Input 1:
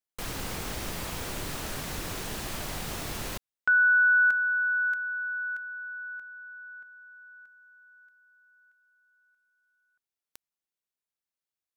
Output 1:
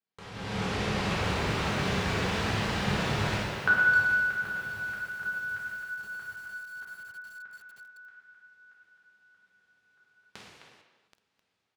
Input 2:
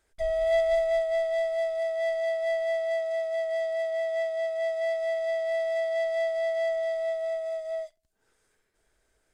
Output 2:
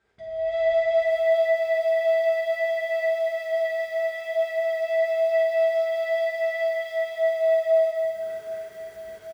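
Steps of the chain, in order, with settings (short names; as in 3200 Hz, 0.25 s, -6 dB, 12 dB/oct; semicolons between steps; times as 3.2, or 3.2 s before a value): low shelf 210 Hz +10 dB; compressor 2:1, threshold -49 dBFS; dynamic EQ 270 Hz, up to -4 dB, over -59 dBFS, Q 1.1; HPF 120 Hz 12 dB/oct; AGC gain up to 14 dB; LPF 3900 Hz 12 dB/oct; doubler 49 ms -11 dB; speakerphone echo 0.26 s, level -7 dB; non-linear reverb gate 0.47 s falling, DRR -5.5 dB; lo-fi delay 0.778 s, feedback 55%, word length 7-bit, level -13 dB; gain -1.5 dB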